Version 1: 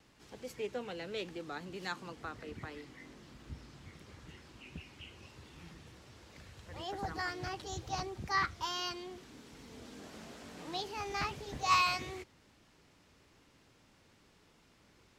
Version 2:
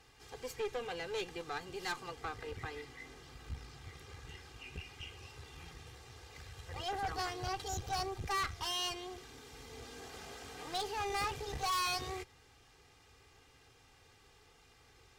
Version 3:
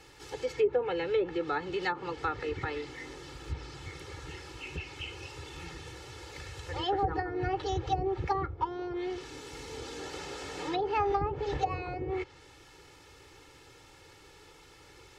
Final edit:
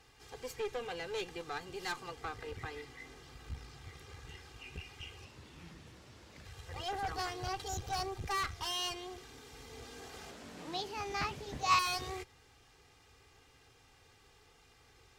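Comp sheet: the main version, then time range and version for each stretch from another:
2
5.25–6.45 s: from 1
10.31–11.79 s: from 1
not used: 3

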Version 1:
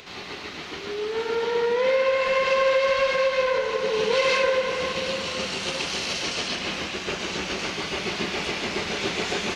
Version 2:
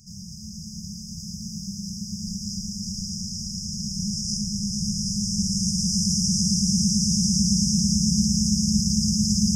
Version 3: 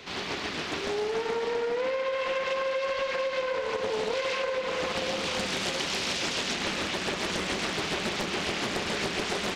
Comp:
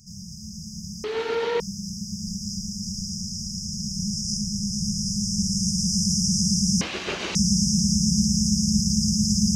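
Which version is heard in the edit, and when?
2
1.04–1.60 s: from 1
6.81–7.35 s: from 1
not used: 3

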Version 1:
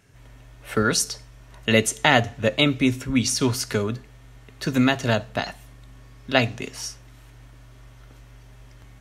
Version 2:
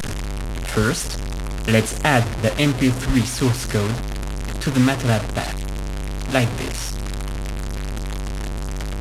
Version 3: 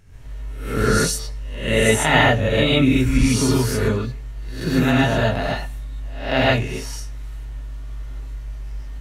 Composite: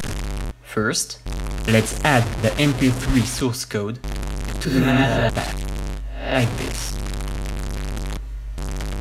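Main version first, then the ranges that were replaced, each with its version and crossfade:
2
0.51–1.26 s: from 1
3.41–4.04 s: from 1
4.65–5.29 s: from 3
5.97–6.38 s: from 3, crossfade 0.10 s
8.17–8.58 s: from 3

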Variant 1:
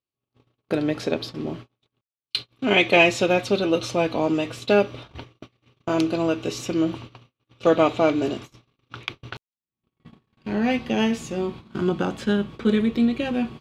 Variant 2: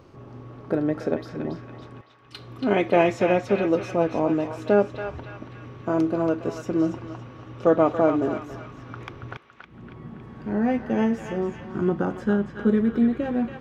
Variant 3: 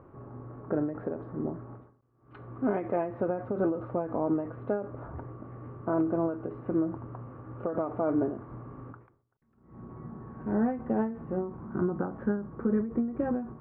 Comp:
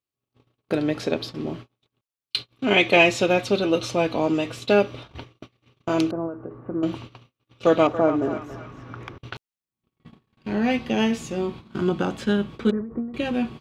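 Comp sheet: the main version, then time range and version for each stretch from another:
1
6.11–6.83 s: from 3
7.87–9.18 s: from 2
12.71–13.14 s: from 3

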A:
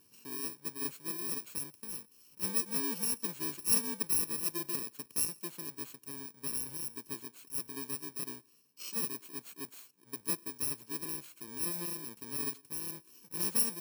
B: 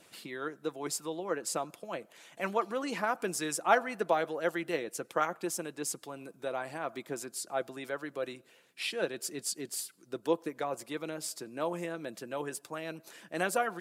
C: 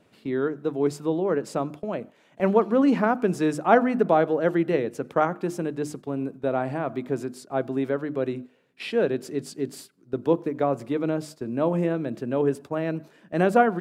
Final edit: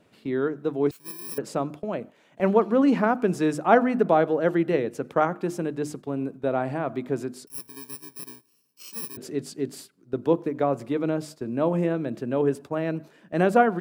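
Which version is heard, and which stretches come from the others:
C
0.91–1.38 s: from A
7.47–9.17 s: from A
not used: B

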